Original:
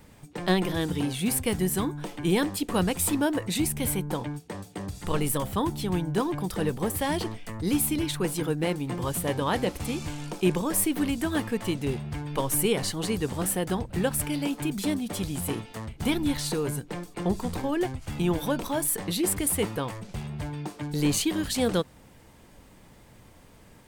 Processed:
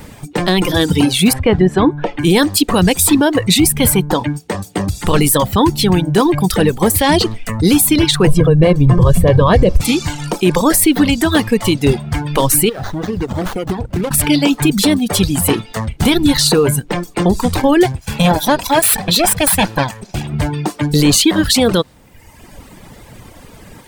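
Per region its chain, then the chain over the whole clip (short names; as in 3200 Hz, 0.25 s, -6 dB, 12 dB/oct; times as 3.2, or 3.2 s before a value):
1.33–2.19 LPF 2600 Hz + dynamic EQ 570 Hz, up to +5 dB, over -41 dBFS, Q 1.1
8.27–9.81 tilt -3.5 dB/oct + comb 1.8 ms, depth 60%
12.69–14.11 compressor 12:1, threshold -30 dBFS + running maximum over 17 samples
17.92–20.33 minimum comb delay 1.2 ms + low shelf 130 Hz -6.5 dB
whole clip: reverb removal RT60 1.1 s; dynamic EQ 4100 Hz, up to +5 dB, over -49 dBFS, Q 1.9; maximiser +19 dB; gain -1 dB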